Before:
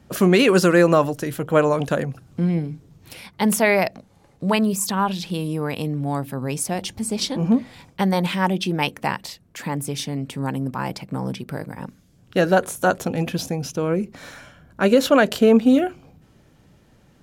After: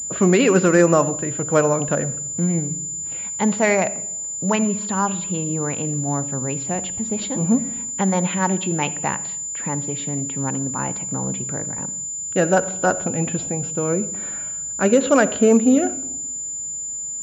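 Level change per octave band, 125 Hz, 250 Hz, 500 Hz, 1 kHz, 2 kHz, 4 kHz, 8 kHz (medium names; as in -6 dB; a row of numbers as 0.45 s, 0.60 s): +0.5 dB, 0.0 dB, 0.0 dB, -0.5 dB, -1.5 dB, -6.5 dB, +12.5 dB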